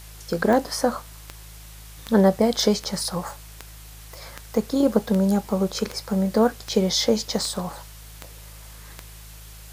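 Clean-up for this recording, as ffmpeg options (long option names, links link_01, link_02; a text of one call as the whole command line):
ffmpeg -i in.wav -af "adeclick=threshold=4,bandreject=frequency=53.2:width_type=h:width=4,bandreject=frequency=106.4:width_type=h:width=4,bandreject=frequency=159.6:width_type=h:width=4,afwtdn=0.005" out.wav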